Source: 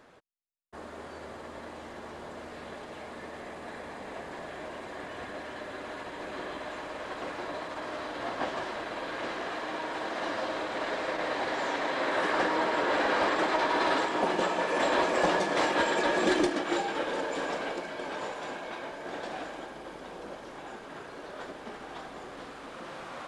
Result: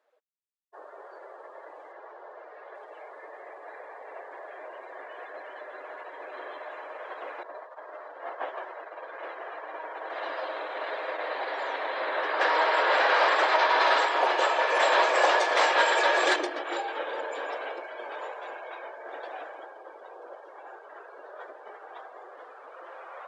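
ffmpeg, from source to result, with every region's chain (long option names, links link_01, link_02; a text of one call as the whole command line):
ffmpeg -i in.wav -filter_complex "[0:a]asettb=1/sr,asplit=3[link_01][link_02][link_03];[link_01]atrim=end=1.924[link_04];[link_02]atrim=start=1.92:end=2.75,asetpts=PTS-STARTPTS,afade=type=in:duration=0.004:curve=qsin,afade=type=out:start_time=0.826:duration=0.004:curve=qsin,lowpass=5500,lowshelf=frequency=210:gain=-4.5[link_05];[link_03]atrim=start=2.746[link_06];[link_04][link_05]acrossfade=duration=0.004:curve1=hsin:curve2=qsin[link_07];[link_07][link_06]acrossfade=duration=0.004:curve1=qsin:curve2=hsin,asettb=1/sr,asplit=3[link_08][link_09][link_10];[link_08]atrim=end=7.434[link_11];[link_09]atrim=start=7.43:end=10.1,asetpts=PTS-STARTPTS,afade=type=in:duration=0.004:curve=qsin,afade=type=out:start_time=2.666:duration=0.004:curve=qsin,agate=range=-33dB:threshold=-34dB:ratio=3:release=100:detection=peak,highpass=230,highshelf=frequency=2700:gain=-5[link_12];[link_10]atrim=start=10.096[link_13];[link_11][link_12]acrossfade=duration=0.004:curve1=hsin:curve2=qsin[link_14];[link_14][link_13]acrossfade=duration=0.004:curve1=qsin:curve2=hsin,asettb=1/sr,asplit=3[link_15][link_16][link_17];[link_15]atrim=end=12.414[link_18];[link_16]atrim=start=12.41:end=16.36,asetpts=PTS-STARTPTS,afade=type=in:duration=0.004:curve=qsin,afade=type=out:start_time=3.946:duration=0.004:curve=qsin,highpass=frequency=600:poles=1,acontrast=83[link_19];[link_17]atrim=start=16.356[link_20];[link_18][link_19]acrossfade=duration=0.004:curve1=hsin:curve2=qsin[link_21];[link_21][link_20]acrossfade=duration=0.004:curve1=qsin:curve2=hsin,highpass=frequency=430:width=0.5412,highpass=frequency=430:width=1.3066,highshelf=frequency=4800:gain=-3.5,afftdn=noise_reduction=18:noise_floor=-46" out.wav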